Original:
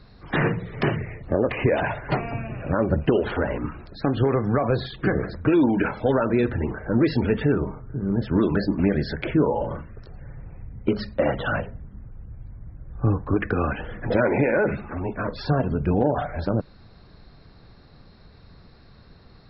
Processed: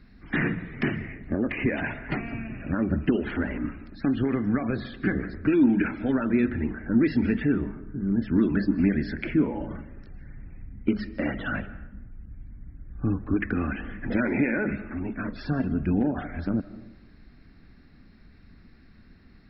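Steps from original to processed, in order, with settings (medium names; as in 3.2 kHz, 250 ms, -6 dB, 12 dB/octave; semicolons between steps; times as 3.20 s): graphic EQ 125/250/500/1000/2000/4000 Hz -8/+8/-11/-9/+6/-10 dB; algorithmic reverb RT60 0.91 s, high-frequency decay 0.5×, pre-delay 110 ms, DRR 16 dB; trim -1.5 dB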